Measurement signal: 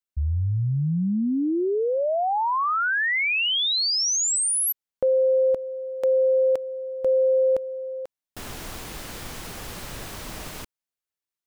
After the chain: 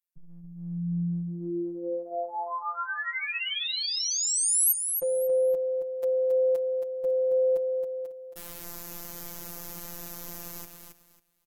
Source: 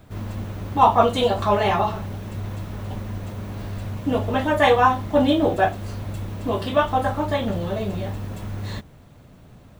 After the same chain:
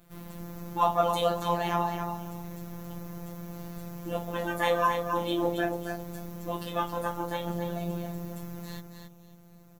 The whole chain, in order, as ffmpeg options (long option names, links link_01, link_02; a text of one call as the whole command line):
ffmpeg -i in.wav -af "equalizer=frequency=14000:width=0.59:gain=14.5,afftfilt=real='hypot(re,im)*cos(PI*b)':imag='0':win_size=1024:overlap=0.75,aecho=1:1:273|546|819:0.473|0.109|0.025,volume=-6.5dB" out.wav